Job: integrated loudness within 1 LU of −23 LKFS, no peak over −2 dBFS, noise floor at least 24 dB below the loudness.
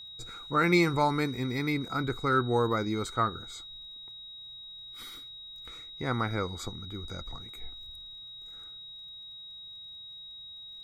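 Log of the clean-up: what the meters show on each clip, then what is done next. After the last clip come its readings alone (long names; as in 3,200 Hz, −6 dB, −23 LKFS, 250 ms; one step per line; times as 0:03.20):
crackle rate 24 per second; interfering tone 3,800 Hz; level of the tone −43 dBFS; integrated loudness −30.5 LKFS; sample peak −11.5 dBFS; target loudness −23.0 LKFS
→ click removal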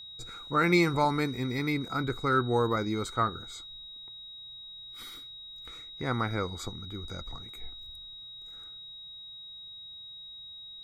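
crackle rate 0 per second; interfering tone 3,800 Hz; level of the tone −43 dBFS
→ notch filter 3,800 Hz, Q 30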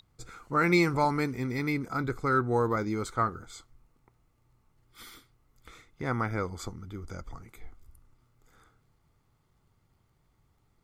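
interfering tone none found; integrated loudness −29.0 LKFS; sample peak −12.0 dBFS; target loudness −23.0 LKFS
→ level +6 dB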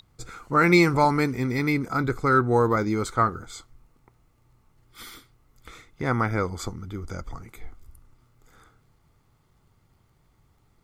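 integrated loudness −23.0 LKFS; sample peak −6.0 dBFS; background noise floor −64 dBFS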